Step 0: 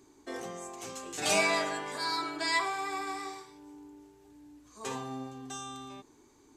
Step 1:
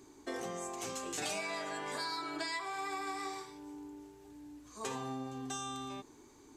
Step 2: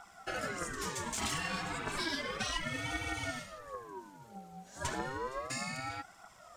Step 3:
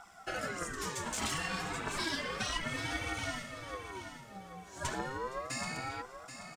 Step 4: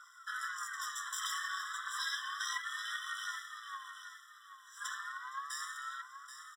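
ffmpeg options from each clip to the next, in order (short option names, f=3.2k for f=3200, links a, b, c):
-af "acompressor=threshold=-38dB:ratio=10,volume=2.5dB"
-af "aphaser=in_gain=1:out_gain=1:delay=4.8:decay=0.57:speed=1.6:type=triangular,aeval=exprs='val(0)*sin(2*PI*780*n/s+780*0.4/0.33*sin(2*PI*0.33*n/s))':c=same,volume=3.5dB"
-af "aecho=1:1:780|1560|2340:0.316|0.0885|0.0248"
-af "aeval=exprs='if(lt(val(0),0),0.447*val(0),val(0))':c=same,afftfilt=real='re*eq(mod(floor(b*sr/1024/1000),2),1)':imag='im*eq(mod(floor(b*sr/1024/1000),2),1)':win_size=1024:overlap=0.75,volume=3.5dB"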